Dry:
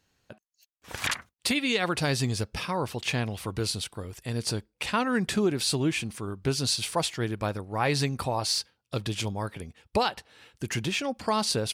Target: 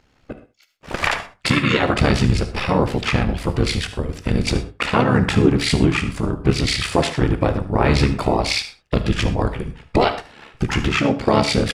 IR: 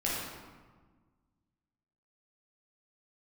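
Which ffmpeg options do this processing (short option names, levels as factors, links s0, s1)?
-filter_complex "[0:a]aemphasis=mode=reproduction:type=50fm,asplit=2[s0][s1];[s1]alimiter=limit=0.0708:level=0:latency=1:release=356,volume=1.12[s2];[s0][s2]amix=inputs=2:normalize=0,tremolo=f=71:d=0.889,asplit=3[s3][s4][s5];[s4]asetrate=22050,aresample=44100,atempo=2,volume=0.794[s6];[s5]asetrate=35002,aresample=44100,atempo=1.25992,volume=0.631[s7];[s3][s6][s7]amix=inputs=3:normalize=0,aecho=1:1:74:0.158,asplit=2[s8][s9];[1:a]atrim=start_sample=2205,afade=t=out:st=0.18:d=0.01,atrim=end_sample=8379,highshelf=f=6600:g=8.5[s10];[s9][s10]afir=irnorm=-1:irlink=0,volume=0.188[s11];[s8][s11]amix=inputs=2:normalize=0,volume=1.88"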